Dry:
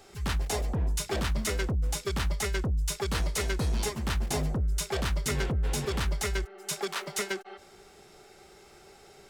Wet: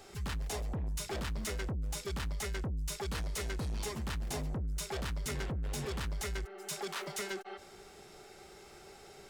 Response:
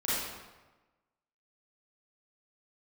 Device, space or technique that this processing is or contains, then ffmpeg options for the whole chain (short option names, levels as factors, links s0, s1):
soft clipper into limiter: -af "asoftclip=type=tanh:threshold=0.0398,alimiter=level_in=2.82:limit=0.0631:level=0:latency=1:release=23,volume=0.355"